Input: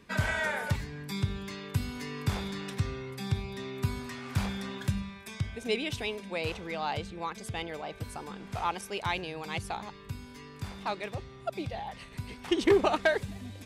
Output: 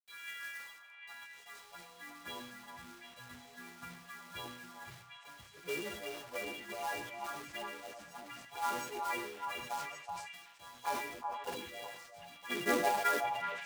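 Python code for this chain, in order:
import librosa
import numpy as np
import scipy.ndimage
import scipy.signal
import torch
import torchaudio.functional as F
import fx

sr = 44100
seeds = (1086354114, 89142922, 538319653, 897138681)

p1 = fx.freq_snap(x, sr, grid_st=3)
p2 = fx.dereverb_blind(p1, sr, rt60_s=1.3)
p3 = fx.bass_treble(p2, sr, bass_db=-6, treble_db=-11)
p4 = fx.pitch_keep_formants(p3, sr, semitones=-7.0)
p5 = fx.filter_sweep_highpass(p4, sr, from_hz=3500.0, to_hz=180.0, start_s=0.25, end_s=2.48, q=0.96)
p6 = fx.env_phaser(p5, sr, low_hz=170.0, high_hz=3800.0, full_db=-30.5)
p7 = fx.quant_companded(p6, sr, bits=4)
p8 = fx.low_shelf(p7, sr, hz=410.0, db=-6.0)
p9 = p8 + fx.echo_stepped(p8, sr, ms=374, hz=890.0, octaves=1.4, feedback_pct=70, wet_db=-3.0, dry=0)
p10 = fx.rev_gated(p9, sr, seeds[0], gate_ms=180, shape='flat', drr_db=9.5)
p11 = fx.sustainer(p10, sr, db_per_s=58.0)
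y = F.gain(torch.from_numpy(p11), -4.5).numpy()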